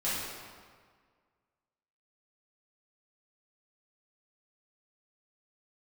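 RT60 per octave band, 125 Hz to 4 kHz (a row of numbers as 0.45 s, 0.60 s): 1.8 s, 1.8 s, 1.7 s, 1.7 s, 1.5 s, 1.2 s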